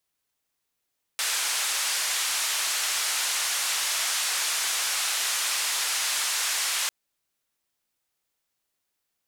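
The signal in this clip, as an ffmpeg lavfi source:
-f lavfi -i "anoisesrc=c=white:d=5.7:r=44100:seed=1,highpass=f=1000,lowpass=f=9200,volume=-18dB"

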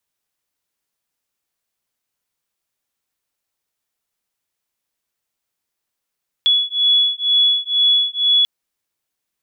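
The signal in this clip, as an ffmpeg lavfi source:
-f lavfi -i "aevalsrc='0.158*(sin(2*PI*3390*t)+sin(2*PI*3392.1*t))':d=1.99:s=44100"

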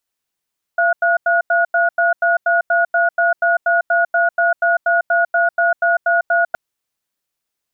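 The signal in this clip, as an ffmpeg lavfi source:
-f lavfi -i "aevalsrc='0.188*(sin(2*PI*684*t)+sin(2*PI*1450*t))*clip(min(mod(t,0.24),0.15-mod(t,0.24))/0.005,0,1)':d=5.77:s=44100"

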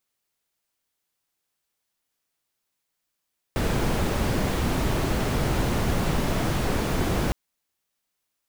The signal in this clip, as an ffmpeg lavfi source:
-f lavfi -i "anoisesrc=c=brown:a=0.313:d=3.76:r=44100:seed=1"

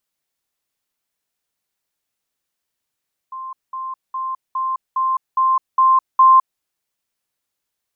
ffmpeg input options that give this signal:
-f lavfi -i "aevalsrc='pow(10,(-27.5+3*floor(t/0.41))/20)*sin(2*PI*1050*t)*clip(min(mod(t,0.41),0.21-mod(t,0.41))/0.005,0,1)':d=3.28:s=44100"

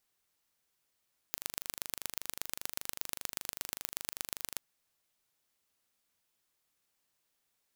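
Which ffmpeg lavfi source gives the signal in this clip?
-f lavfi -i "aevalsrc='0.473*eq(mod(n,1757),0)*(0.5+0.5*eq(mod(n,5271),0))':d=3.23:s=44100"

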